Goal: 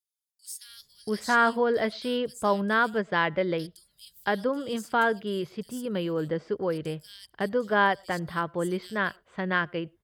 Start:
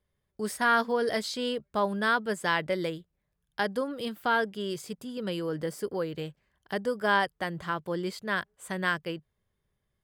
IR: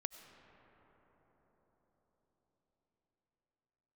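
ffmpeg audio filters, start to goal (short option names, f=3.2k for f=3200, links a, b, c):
-filter_complex "[0:a]acrossover=split=4300[a][b];[a]adelay=680[c];[c][b]amix=inputs=2:normalize=0,asplit=2[d][e];[1:a]atrim=start_sample=2205,afade=t=out:st=0.17:d=0.01,atrim=end_sample=7938,highshelf=f=2k:g=-11[f];[e][f]afir=irnorm=-1:irlink=0,volume=-3.5dB[g];[d][g]amix=inputs=2:normalize=0"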